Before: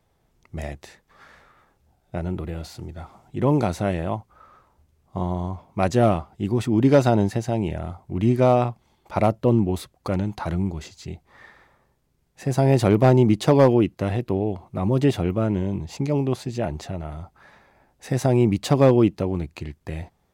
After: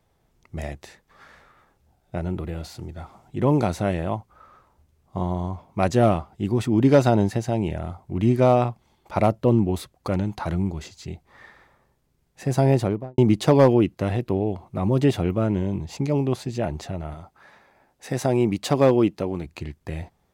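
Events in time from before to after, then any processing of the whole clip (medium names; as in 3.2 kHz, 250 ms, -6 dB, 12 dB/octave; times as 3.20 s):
12.61–13.18 s: studio fade out
17.14–19.46 s: bass shelf 130 Hz -10.5 dB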